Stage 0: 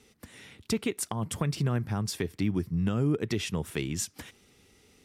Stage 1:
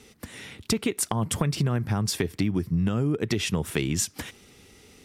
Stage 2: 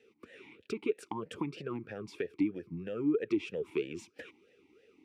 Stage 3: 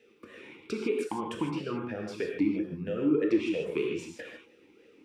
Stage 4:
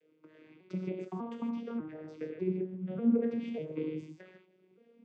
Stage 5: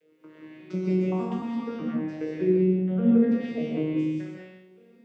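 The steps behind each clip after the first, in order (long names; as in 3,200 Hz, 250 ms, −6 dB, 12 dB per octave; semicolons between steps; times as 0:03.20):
downward compressor, threshold −29 dBFS, peak gain reduction 7.5 dB; level +8 dB
in parallel at −9.5 dB: slack as between gear wheels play −42.5 dBFS; on the sum: formant filter swept between two vowels e-u 3.1 Hz
reverb whose tail is shaped and stops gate 180 ms flat, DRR 0 dB; level +2.5 dB
vocoder with an arpeggio as carrier minor triad, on D#3, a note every 596 ms; level −3.5 dB
peak hold with a decay on every bin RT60 0.62 s; reverb whose tail is shaped and stops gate 220 ms rising, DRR −2.5 dB; level +4.5 dB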